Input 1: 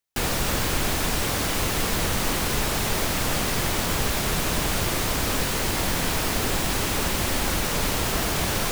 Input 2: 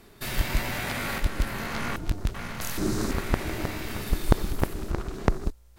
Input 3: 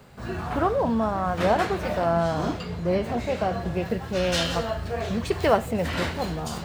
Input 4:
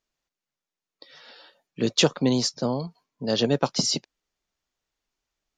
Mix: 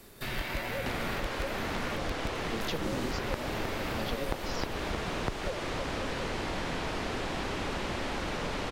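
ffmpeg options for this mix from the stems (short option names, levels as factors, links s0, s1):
-filter_complex "[0:a]lowpass=5300,acrossover=split=240|840|2400[s0][s1][s2][s3];[s0]acompressor=threshold=0.0158:ratio=4[s4];[s1]acompressor=threshold=0.02:ratio=4[s5];[s2]acompressor=threshold=0.0112:ratio=4[s6];[s3]acompressor=threshold=0.00794:ratio=4[s7];[s4][s5][s6][s7]amix=inputs=4:normalize=0,adelay=700,volume=1.12[s8];[1:a]volume=0.841[s9];[2:a]asplit=3[s10][s11][s12];[s10]bandpass=f=530:t=q:w=8,volume=1[s13];[s11]bandpass=f=1840:t=q:w=8,volume=0.501[s14];[s12]bandpass=f=2480:t=q:w=8,volume=0.355[s15];[s13][s14][s15]amix=inputs=3:normalize=0,volume=0.447[s16];[3:a]adelay=700,volume=0.316[s17];[s8][s9][s16][s17]amix=inputs=4:normalize=0,highshelf=f=5700:g=9,acrossover=split=250|4000[s18][s19][s20];[s18]acompressor=threshold=0.0178:ratio=4[s21];[s19]acompressor=threshold=0.0224:ratio=4[s22];[s20]acompressor=threshold=0.002:ratio=4[s23];[s21][s22][s23]amix=inputs=3:normalize=0"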